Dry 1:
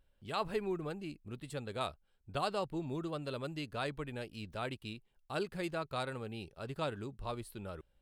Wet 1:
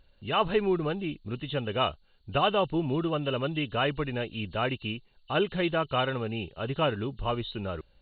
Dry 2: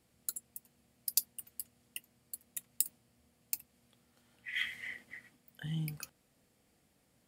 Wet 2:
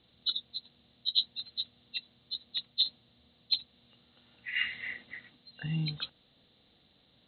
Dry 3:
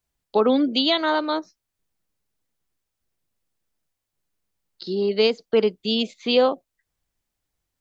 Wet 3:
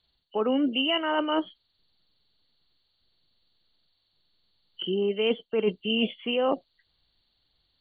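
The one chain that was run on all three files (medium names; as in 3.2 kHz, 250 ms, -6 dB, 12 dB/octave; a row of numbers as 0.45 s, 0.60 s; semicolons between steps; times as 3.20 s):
knee-point frequency compression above 2.7 kHz 4:1; reverse; compression 16:1, threshold -27 dBFS; reverse; peak normalisation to -12 dBFS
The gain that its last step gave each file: +10.5 dB, +4.5 dB, +5.5 dB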